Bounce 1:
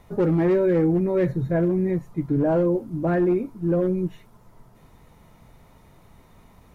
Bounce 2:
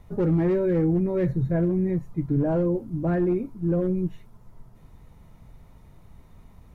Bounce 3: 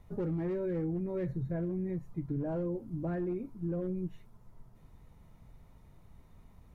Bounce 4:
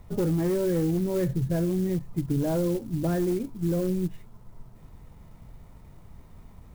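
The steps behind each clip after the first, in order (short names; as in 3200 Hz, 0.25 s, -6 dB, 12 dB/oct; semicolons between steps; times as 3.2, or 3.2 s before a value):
low shelf 170 Hz +11.5 dB; gain -5.5 dB
compressor 2.5:1, threshold -26 dBFS, peak gain reduction 5.5 dB; gain -7 dB
clock jitter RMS 0.043 ms; gain +8.5 dB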